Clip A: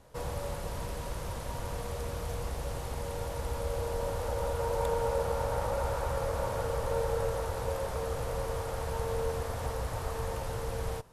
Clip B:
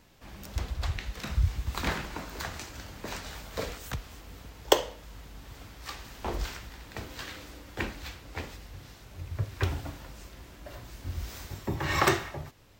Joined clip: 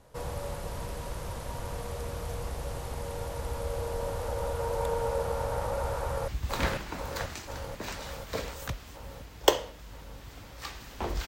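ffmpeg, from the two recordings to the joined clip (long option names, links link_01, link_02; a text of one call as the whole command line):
ffmpeg -i cue0.wav -i cue1.wav -filter_complex "[0:a]apad=whole_dur=11.27,atrim=end=11.27,atrim=end=6.282[link_01];[1:a]atrim=start=1.518:end=6.51[link_02];[link_01][link_02]acrossfade=duration=0.004:curve1=hsin:curve2=hsin,asplit=2[link_03][link_04];[link_04]afade=type=in:start_time=6:duration=0.01,afade=type=out:start_time=6.28:duration=0.01,aecho=0:1:490|980|1470|1960|2450|2940|3430|3920|4410|4900|5390|5880:0.707946|0.530959|0.39822|0.298665|0.223998|0.167999|0.125999|0.0944994|0.0708745|0.0531559|0.0398669|0.0299002[link_05];[link_03][link_05]amix=inputs=2:normalize=0" out.wav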